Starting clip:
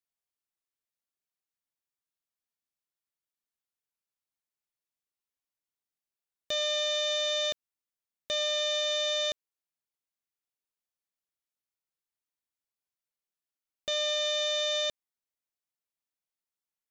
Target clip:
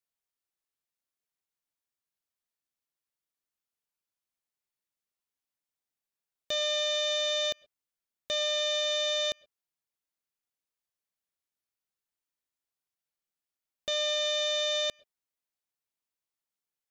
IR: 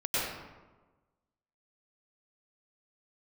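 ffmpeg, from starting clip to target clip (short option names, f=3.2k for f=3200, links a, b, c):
-filter_complex "[0:a]asplit=2[a][b];[1:a]atrim=start_sample=2205,atrim=end_sample=6174,lowpass=4.8k[c];[b][c]afir=irnorm=-1:irlink=0,volume=-31dB[d];[a][d]amix=inputs=2:normalize=0"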